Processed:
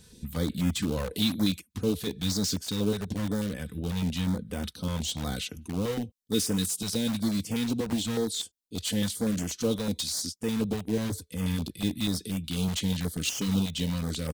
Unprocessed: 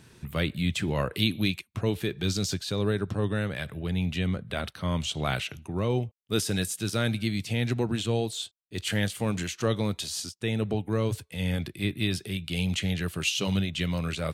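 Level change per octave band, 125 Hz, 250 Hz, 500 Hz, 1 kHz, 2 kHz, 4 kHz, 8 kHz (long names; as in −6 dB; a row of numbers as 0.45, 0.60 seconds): −3.5, +1.5, −2.5, −5.0, −7.5, −1.0, +3.0 decibels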